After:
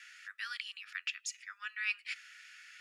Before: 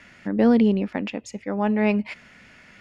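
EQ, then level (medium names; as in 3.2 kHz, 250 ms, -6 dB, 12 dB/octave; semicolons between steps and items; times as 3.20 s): steep high-pass 1.3 kHz 72 dB/octave; treble shelf 3.1 kHz +9 dB; band-stop 2.1 kHz, Q 15; -5.5 dB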